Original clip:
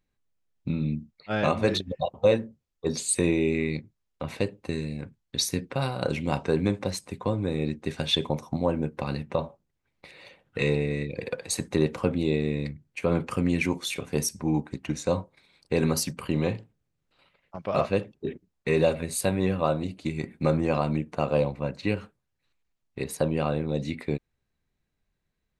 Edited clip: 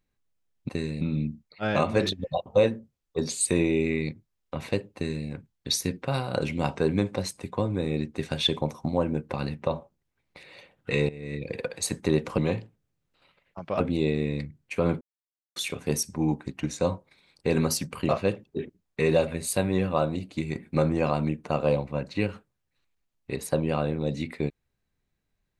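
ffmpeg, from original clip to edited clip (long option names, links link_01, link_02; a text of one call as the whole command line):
ffmpeg -i in.wav -filter_complex "[0:a]asplit=9[link_01][link_02][link_03][link_04][link_05][link_06][link_07][link_08][link_09];[link_01]atrim=end=0.692[link_10];[link_02]atrim=start=4.628:end=4.952[link_11];[link_03]atrim=start=0.688:end=10.77,asetpts=PTS-STARTPTS,afade=type=out:start_time=10.078:duration=0.004:curve=hsin:silence=0.158489[link_12];[link_04]atrim=start=10.77:end=12.062,asetpts=PTS-STARTPTS,afade=type=in:duration=0.3:curve=qua:silence=0.158489[link_13];[link_05]atrim=start=16.348:end=17.772[link_14];[link_06]atrim=start=12.058:end=13.27,asetpts=PTS-STARTPTS,afade=type=out:start_time=1.208:duration=0.004:curve=hsin[link_15];[link_07]atrim=start=13.27:end=13.82,asetpts=PTS-STARTPTS,volume=0[link_16];[link_08]atrim=start=13.82:end=16.352,asetpts=PTS-STARTPTS,afade=type=in:duration=0.004:curve=hsin[link_17];[link_09]atrim=start=17.768[link_18];[link_10][link_11]acrossfade=duration=0.004:curve1=hsin:curve2=hsin[link_19];[link_12][link_13]concat=n=2:v=0:a=1[link_20];[link_19][link_20]acrossfade=duration=0.004:curve1=hsin:curve2=hsin[link_21];[link_21][link_14]acrossfade=duration=0.004:curve1=hsin:curve2=hsin[link_22];[link_15][link_16][link_17]concat=n=3:v=0:a=1[link_23];[link_22][link_23]acrossfade=duration=0.004:curve1=hsin:curve2=hsin[link_24];[link_24][link_18]acrossfade=duration=0.004:curve1=hsin:curve2=hsin" out.wav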